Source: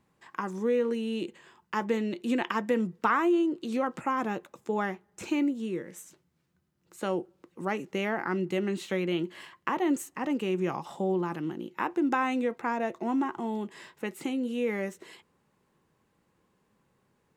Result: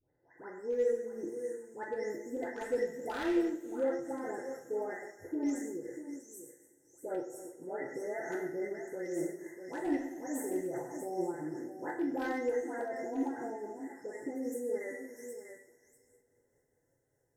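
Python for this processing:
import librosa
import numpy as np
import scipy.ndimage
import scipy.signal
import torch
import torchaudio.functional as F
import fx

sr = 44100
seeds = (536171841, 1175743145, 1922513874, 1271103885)

y = fx.spec_delay(x, sr, highs='late', ms=373)
y = fx.brickwall_bandstop(y, sr, low_hz=2100.0, high_hz=5200.0)
y = fx.echo_multitap(y, sr, ms=(84, 98, 120, 128, 275, 643), db=(-16.5, -11.5, -15.5, -16.5, -17.5, -11.0))
y = np.clip(y, -10.0 ** (-20.0 / 20.0), 10.0 ** (-20.0 / 20.0))
y = fx.fixed_phaser(y, sr, hz=470.0, stages=4)
y = fx.rev_double_slope(y, sr, seeds[0], early_s=0.49, late_s=3.4, knee_db=-21, drr_db=2.0)
y = fx.am_noise(y, sr, seeds[1], hz=5.7, depth_pct=65)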